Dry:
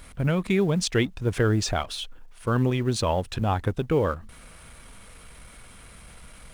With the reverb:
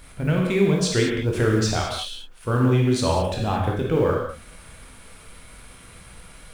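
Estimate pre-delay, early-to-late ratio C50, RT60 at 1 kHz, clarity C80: 6 ms, 1.5 dB, can't be measured, 4.5 dB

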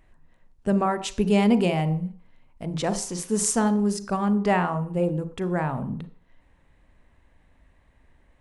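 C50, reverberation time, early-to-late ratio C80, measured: 14.5 dB, 0.45 s, 18.0 dB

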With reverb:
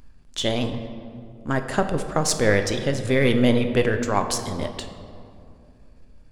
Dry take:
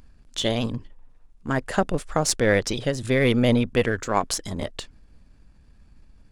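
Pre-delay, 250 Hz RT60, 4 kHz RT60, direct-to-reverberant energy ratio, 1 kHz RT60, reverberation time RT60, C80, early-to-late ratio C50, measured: 8 ms, 3.0 s, 1.3 s, 6.5 dB, 2.3 s, 2.5 s, 10.0 dB, 8.5 dB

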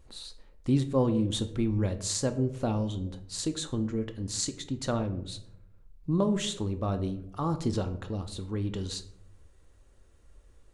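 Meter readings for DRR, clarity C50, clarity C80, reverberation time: 8.0 dB, 13.0 dB, 16.0 dB, 0.70 s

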